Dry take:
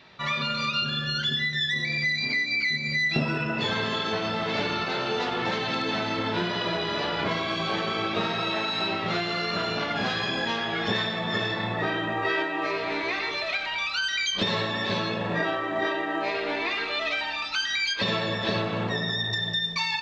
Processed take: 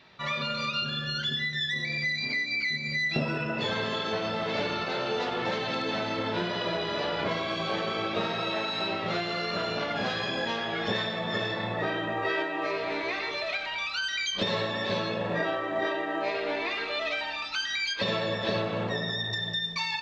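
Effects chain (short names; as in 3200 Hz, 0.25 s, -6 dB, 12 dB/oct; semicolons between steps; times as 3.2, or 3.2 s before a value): dynamic EQ 550 Hz, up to +6 dB, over -46 dBFS, Q 2.9; gain -3.5 dB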